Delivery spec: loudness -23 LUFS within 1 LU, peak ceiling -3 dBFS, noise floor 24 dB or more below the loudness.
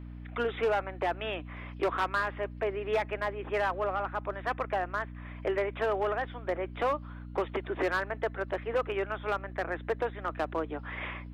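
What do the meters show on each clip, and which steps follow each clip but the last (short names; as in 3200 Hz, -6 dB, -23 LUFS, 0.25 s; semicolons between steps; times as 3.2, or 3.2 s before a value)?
clipped 1.2%; flat tops at -22.5 dBFS; hum 60 Hz; harmonics up to 300 Hz; hum level -41 dBFS; loudness -32.5 LUFS; peak -22.5 dBFS; loudness target -23.0 LUFS
-> clip repair -22.5 dBFS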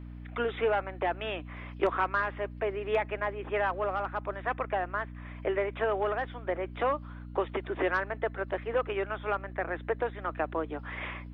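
clipped 0.0%; hum 60 Hz; harmonics up to 300 Hz; hum level -41 dBFS
-> de-hum 60 Hz, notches 5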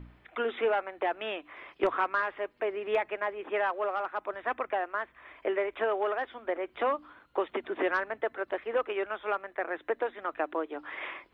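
hum none; loudness -32.5 LUFS; peak -13.5 dBFS; loudness target -23.0 LUFS
-> gain +9.5 dB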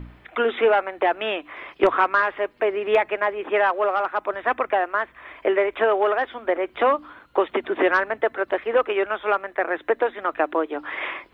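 loudness -23.0 LUFS; peak -4.0 dBFS; noise floor -53 dBFS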